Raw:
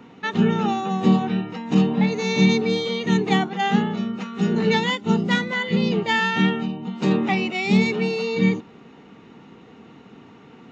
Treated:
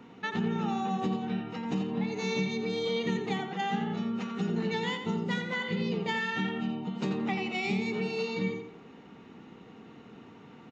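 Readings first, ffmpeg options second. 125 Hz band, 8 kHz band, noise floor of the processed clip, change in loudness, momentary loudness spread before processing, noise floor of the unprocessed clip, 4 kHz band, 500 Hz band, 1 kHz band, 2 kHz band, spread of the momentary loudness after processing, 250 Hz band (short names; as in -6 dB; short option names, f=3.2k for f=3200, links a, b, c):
-11.5 dB, n/a, -51 dBFS, -10.5 dB, 7 LU, -47 dBFS, -10.0 dB, -9.0 dB, -9.5 dB, -9.5 dB, 20 LU, -11.0 dB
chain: -filter_complex "[0:a]acompressor=threshold=-23dB:ratio=6,asplit=2[a][b];[b]adelay=87,lowpass=f=3.7k:p=1,volume=-6dB,asplit=2[c][d];[d]adelay=87,lowpass=f=3.7k:p=1,volume=0.39,asplit=2[e][f];[f]adelay=87,lowpass=f=3.7k:p=1,volume=0.39,asplit=2[g][h];[h]adelay=87,lowpass=f=3.7k:p=1,volume=0.39,asplit=2[i][j];[j]adelay=87,lowpass=f=3.7k:p=1,volume=0.39[k];[c][e][g][i][k]amix=inputs=5:normalize=0[l];[a][l]amix=inputs=2:normalize=0,volume=-5.5dB"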